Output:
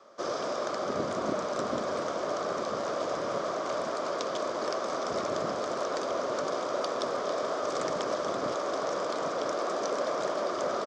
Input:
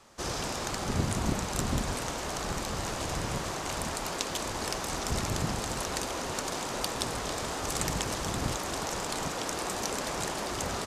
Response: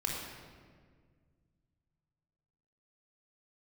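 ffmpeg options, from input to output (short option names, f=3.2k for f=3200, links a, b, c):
-filter_complex "[0:a]acrossover=split=670|3300[a][b][c];[a]acontrast=64[d];[d][b][c]amix=inputs=3:normalize=0,highpass=410,equalizer=f=600:t=q:w=4:g=8,equalizer=f=850:t=q:w=4:g=-8,equalizer=f=1.2k:t=q:w=4:g=7,equalizer=f=1.9k:t=q:w=4:g=-5,equalizer=f=2.7k:t=q:w=4:g=-10,equalizer=f=4.1k:t=q:w=4:g=-6,lowpass=f=5.3k:w=0.5412,lowpass=f=5.3k:w=1.3066,asplit=2[e][f];[f]adelay=991.3,volume=-9dB,highshelf=f=4k:g=-22.3[g];[e][g]amix=inputs=2:normalize=0"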